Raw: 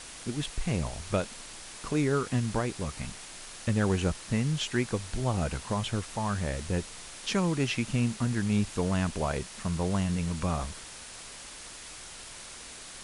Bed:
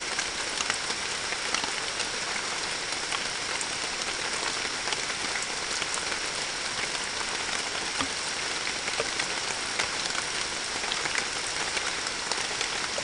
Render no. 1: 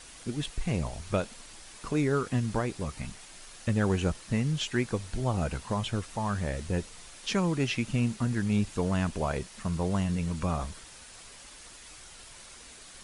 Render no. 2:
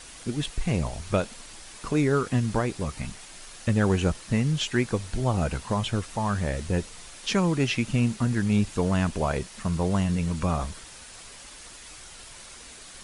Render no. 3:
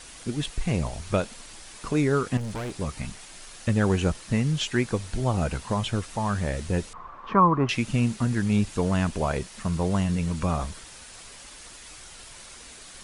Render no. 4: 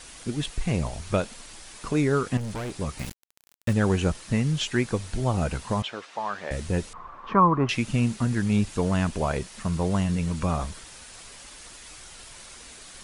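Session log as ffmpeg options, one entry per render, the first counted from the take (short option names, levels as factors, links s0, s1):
-af "afftdn=nr=6:nf=-45"
-af "volume=1.58"
-filter_complex "[0:a]asettb=1/sr,asplit=3[s0][s1][s2];[s0]atrim=end=2.374[s3];[s1]atrim=start=2.37:end=2.78,asetpts=PTS-STARTPTS,afade=t=in:d=0.004:c=qsin,afade=t=out:st=0.406:d=0.004:c=qsin,volume=29.9,asoftclip=hard,volume=0.0335[s4];[s2]atrim=start=2.776[s5];[s3][s4]acrossfade=d=0.004:c1=hsin:c2=qsin[s6];[s6][s5]acrossfade=d=0.004:c1=qsin:c2=hsin,asettb=1/sr,asplit=3[s7][s8][s9];[s7]atrim=end=6.934[s10];[s8]atrim=start=6.93:end=7.69,asetpts=PTS-STARTPTS,afade=t=in:d=0.004:c=qsin,afade=t=out:st=0.756:d=0.004:c=qsin,lowpass=f=1100:t=q:w=11[s11];[s9]atrim=start=7.686[s12];[s10][s11]acrossfade=d=0.004:c1=hsin:c2=qsin[s13];[s13][s12]acrossfade=d=0.004:c1=qsin:c2=hsin"
-filter_complex "[0:a]asettb=1/sr,asplit=3[s0][s1][s2];[s0]atrim=end=2.994[s3];[s1]atrim=start=2.99:end=3.73,asetpts=PTS-STARTPTS,afade=t=in:d=0.004:c=qsin,afade=t=out:st=0.736:d=0.004:c=qsin,aeval=exprs='val(0)*gte(abs(val(0)),0.0211)':c=same[s4];[s2]atrim=start=3.726[s5];[s3][s4]acrossfade=d=0.004:c1=hsin:c2=qsin[s6];[s6][s5]acrossfade=d=0.004:c1=qsin:c2=hsin,asettb=1/sr,asplit=3[s7][s8][s9];[s7]atrim=end=5.824[s10];[s8]atrim=start=5.82:end=6.51,asetpts=PTS-STARTPTS,afade=t=in:d=0.004:c=qsin,afade=t=out:st=0.686:d=0.004:c=qsin,highpass=490,lowpass=4000[s11];[s9]atrim=start=6.506[s12];[s10][s11]acrossfade=d=0.004:c1=hsin:c2=qsin[s13];[s13][s12]acrossfade=d=0.004:c1=qsin:c2=hsin"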